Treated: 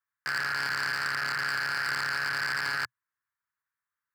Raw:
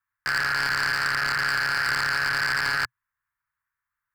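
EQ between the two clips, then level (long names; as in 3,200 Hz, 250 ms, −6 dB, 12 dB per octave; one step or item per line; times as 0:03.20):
high-pass filter 110 Hz 12 dB per octave
−5.5 dB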